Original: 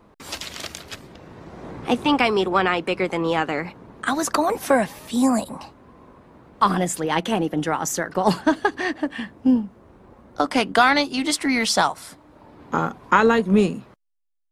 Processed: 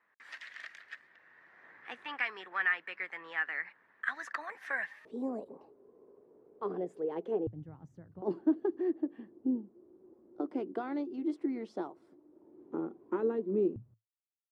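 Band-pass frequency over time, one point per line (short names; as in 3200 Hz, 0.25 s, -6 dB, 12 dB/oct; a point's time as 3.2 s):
band-pass, Q 8.1
1800 Hz
from 5.05 s 420 Hz
from 7.47 s 110 Hz
from 8.22 s 350 Hz
from 13.76 s 110 Hz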